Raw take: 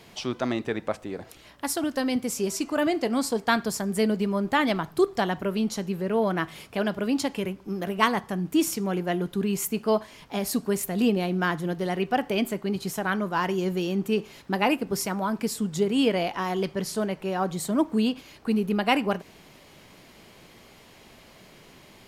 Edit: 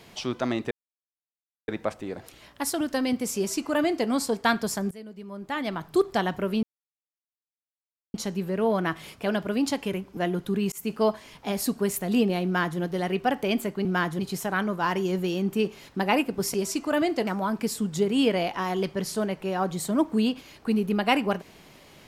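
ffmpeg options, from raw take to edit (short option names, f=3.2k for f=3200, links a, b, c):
-filter_complex "[0:a]asplit=10[a][b][c][d][e][f][g][h][i][j];[a]atrim=end=0.71,asetpts=PTS-STARTPTS,afade=t=out:st=0.706:d=0.004:c=hsin,apad=pad_dur=0.97[k];[b]atrim=start=0.71:end=3.94,asetpts=PTS-STARTPTS,afade=t=in:d=0.004:c=hsin,afade=t=out:st=3.226:d=0.004:c=hsin:silence=0.105925[l];[c]atrim=start=3.94:end=5.66,asetpts=PTS-STARTPTS,afade=t=in:d=1.1:c=qua:silence=0.105925,afade=t=out:st=1.716:d=0.004:c=hsin,apad=pad_dur=1.51[m];[d]atrim=start=5.66:end=7.692,asetpts=PTS-STARTPTS,afade=t=in:d=0.004:c=hsin[n];[e]atrim=start=9.038:end=9.59,asetpts=PTS-STARTPTS,afade=t=out:st=0.548:d=0.004:c=hsin[o];[f]atrim=start=9.59:end=12.722,asetpts=PTS-STARTPTS,afade=t=in:d=0.25:c=qsin[p];[g]atrim=start=11.318:end=11.662[q];[h]atrim=start=12.718:end=15.072[r];[i]atrim=start=2.388:end=3.122[s];[j]atrim=start=15.068[t];[k][l][m][n]concat=n=4:v=0:a=1[u];[o][p]concat=n=2:v=0:a=1[v];[u][v]acrossfade=d=0.004:c1=hsin:c2=hsin[w];[w][q]acrossfade=d=0.004:c1=hsin:c2=hsin[x];[x][r]acrossfade=d=0.004:c1=hsin:c2=hsin[y];[y][s]acrossfade=d=0.004:c1=hsin:c2=hsin[z];[z][t]acrossfade=d=0.004:c1=hsin:c2=hsin"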